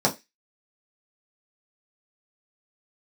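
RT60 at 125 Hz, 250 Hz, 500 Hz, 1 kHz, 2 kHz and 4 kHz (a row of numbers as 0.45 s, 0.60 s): 0.15 s, 0.20 s, 0.20 s, 0.20 s, 0.25 s, 0.30 s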